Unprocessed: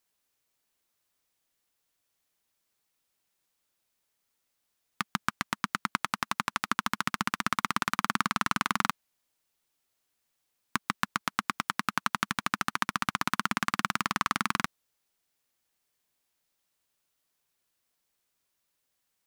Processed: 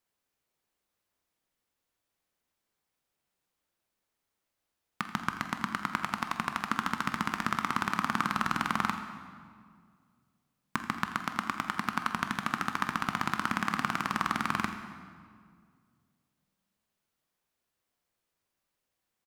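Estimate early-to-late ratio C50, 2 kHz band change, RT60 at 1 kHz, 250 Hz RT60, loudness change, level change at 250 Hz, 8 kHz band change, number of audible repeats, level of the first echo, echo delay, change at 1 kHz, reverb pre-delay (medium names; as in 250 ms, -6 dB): 7.5 dB, -2.0 dB, 1.9 s, 2.4 s, -1.5 dB, +1.5 dB, -6.5 dB, 2, -14.5 dB, 46 ms, -0.5 dB, 15 ms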